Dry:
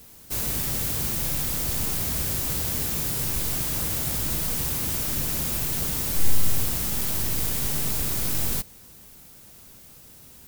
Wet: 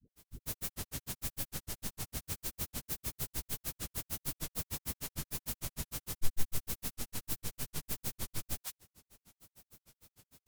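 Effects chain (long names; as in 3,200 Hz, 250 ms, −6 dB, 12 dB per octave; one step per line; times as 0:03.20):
formants moved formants −2 semitones
all-pass dispersion highs, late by 117 ms, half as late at 400 Hz
granular cloud 92 ms, grains 6.6 per second, spray 26 ms, pitch spread up and down by 0 semitones
level −7 dB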